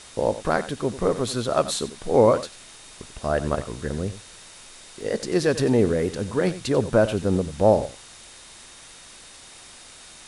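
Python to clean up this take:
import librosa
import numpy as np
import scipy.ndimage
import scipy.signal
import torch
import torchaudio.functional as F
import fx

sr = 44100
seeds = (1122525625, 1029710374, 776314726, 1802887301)

y = fx.notch(x, sr, hz=3700.0, q=30.0)
y = fx.fix_interpolate(y, sr, at_s=(2.74, 4.43, 5.01), length_ms=1.2)
y = fx.noise_reduce(y, sr, print_start_s=8.93, print_end_s=9.43, reduce_db=22.0)
y = fx.fix_echo_inverse(y, sr, delay_ms=91, level_db=-14.5)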